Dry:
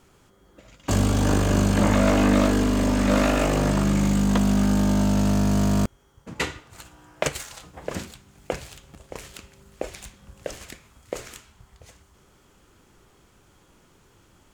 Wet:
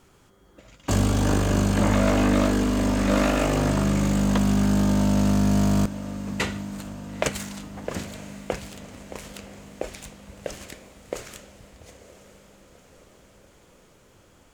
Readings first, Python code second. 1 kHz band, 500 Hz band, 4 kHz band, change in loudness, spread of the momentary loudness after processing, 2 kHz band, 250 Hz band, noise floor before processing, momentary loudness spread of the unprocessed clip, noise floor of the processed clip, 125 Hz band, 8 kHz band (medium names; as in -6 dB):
-1.0 dB, -1.0 dB, -0.5 dB, -1.0 dB, 19 LU, -1.0 dB, -0.5 dB, -58 dBFS, 18 LU, -56 dBFS, -0.5 dB, -0.5 dB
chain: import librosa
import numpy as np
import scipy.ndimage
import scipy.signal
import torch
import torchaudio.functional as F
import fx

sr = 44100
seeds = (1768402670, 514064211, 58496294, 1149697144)

y = fx.rider(x, sr, range_db=10, speed_s=2.0)
y = fx.echo_diffused(y, sr, ms=935, feedback_pct=61, wet_db=-15.0)